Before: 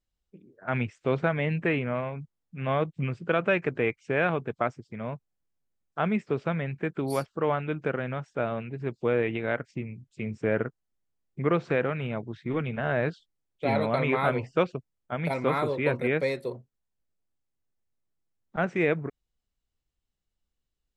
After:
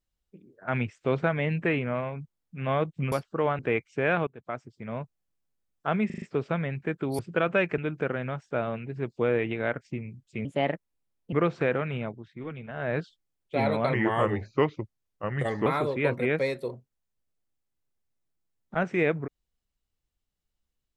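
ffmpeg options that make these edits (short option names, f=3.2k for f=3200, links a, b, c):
-filter_complex "[0:a]asplit=16[a][b][c][d][e][f][g][h][i][j][k][l][m][n][o][p];[a]atrim=end=3.122[q];[b]atrim=start=7.148:end=7.622[r];[c]atrim=start=3.708:end=4.39,asetpts=PTS-STARTPTS,afade=t=out:st=0.678:d=0.004:c=hsin:silence=0.0841395[s];[d]atrim=start=4.39:end=6.222,asetpts=PTS-STARTPTS,afade=t=in:d=0.66:silence=0.0841395[t];[e]atrim=start=6.178:end=6.222[u];[f]atrim=start=6.178:end=6.222[v];[g]atrim=start=6.178:end=6.222[w];[h]atrim=start=6.178:end=7.152[x];[i]atrim=start=3.118:end=3.712[y];[j]atrim=start=7.618:end=10.294[z];[k]atrim=start=10.29:end=11.42,asetpts=PTS-STARTPTS,asetrate=56889,aresample=44100,atrim=end_sample=38630,asetpts=PTS-STARTPTS[aa];[l]atrim=start=11.416:end=12.34,asetpts=PTS-STARTPTS,afade=t=out:st=0.674:d=0.25:silence=0.375837[ab];[m]atrim=start=12.34:end=12.85,asetpts=PTS-STARTPTS,volume=-8.5dB[ac];[n]atrim=start=12.85:end=14.034,asetpts=PTS-STARTPTS,afade=t=in:d=0.25:silence=0.375837[ad];[o]atrim=start=14.03:end=15.48,asetpts=PTS-STARTPTS,asetrate=37044,aresample=44100[ae];[p]atrim=start=15.476[af];[q][r]acrossfade=d=0.004:c1=hsin:c2=hsin[ag];[s][t]concat=n=2:v=0:a=1[ah];[ag][ah]acrossfade=d=0.004:c1=hsin:c2=hsin[ai];[ai][u]acrossfade=d=0.004:c1=hsin:c2=hsin[aj];[aj][v]acrossfade=d=0.004:c1=hsin:c2=hsin[ak];[ak][w]acrossfade=d=0.004:c1=hsin:c2=hsin[al];[al][x]acrossfade=d=0.004:c1=hsin:c2=hsin[am];[am][y]acrossfade=d=0.004:c1=hsin:c2=hsin[an];[an][z]acrossfade=d=0.004:c1=hsin:c2=hsin[ao];[ao][aa]acrossfade=d=0.004:c1=hsin:c2=hsin[ap];[ab][ac][ad]concat=n=3:v=0:a=1[aq];[ap][aq]acrossfade=d=0.004:c1=hsin:c2=hsin[ar];[ar][ae]acrossfade=d=0.004:c1=hsin:c2=hsin[as];[as][af]acrossfade=d=0.004:c1=hsin:c2=hsin"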